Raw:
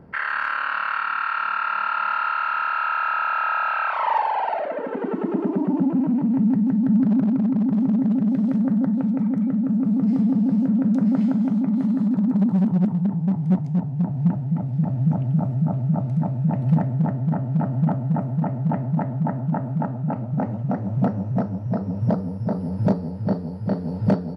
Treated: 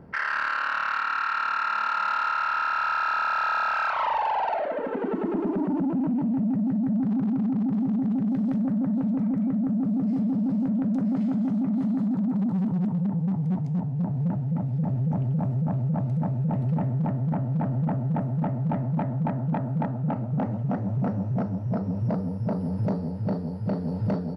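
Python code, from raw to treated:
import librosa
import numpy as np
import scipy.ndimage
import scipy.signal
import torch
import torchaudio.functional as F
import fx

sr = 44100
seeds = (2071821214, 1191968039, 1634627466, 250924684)

p1 = fx.over_compress(x, sr, threshold_db=-22.0, ratio=-1.0)
p2 = x + (p1 * 10.0 ** (1.0 / 20.0))
p3 = 10.0 ** (-10.5 / 20.0) * np.tanh(p2 / 10.0 ** (-10.5 / 20.0))
y = p3 * 10.0 ** (-8.0 / 20.0)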